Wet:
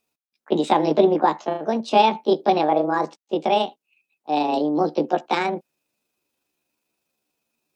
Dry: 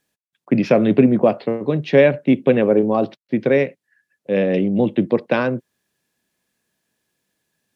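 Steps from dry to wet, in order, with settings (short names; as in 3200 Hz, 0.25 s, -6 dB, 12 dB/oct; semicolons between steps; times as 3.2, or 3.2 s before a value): delay-line pitch shifter +7 st; gain -2.5 dB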